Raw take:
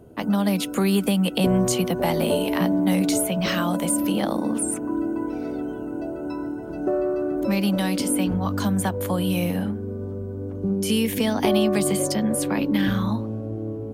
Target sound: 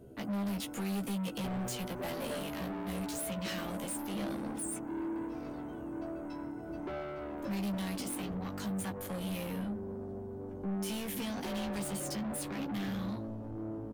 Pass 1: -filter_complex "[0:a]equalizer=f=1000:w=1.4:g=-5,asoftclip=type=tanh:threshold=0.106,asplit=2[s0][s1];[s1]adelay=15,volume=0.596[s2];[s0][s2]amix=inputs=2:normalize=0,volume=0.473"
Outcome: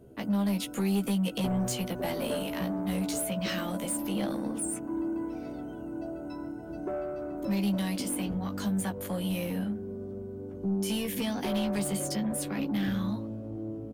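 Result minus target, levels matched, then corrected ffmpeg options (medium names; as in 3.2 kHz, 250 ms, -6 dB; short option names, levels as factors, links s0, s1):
saturation: distortion -8 dB
-filter_complex "[0:a]equalizer=f=1000:w=1.4:g=-5,asoftclip=type=tanh:threshold=0.0335,asplit=2[s0][s1];[s1]adelay=15,volume=0.596[s2];[s0][s2]amix=inputs=2:normalize=0,volume=0.473"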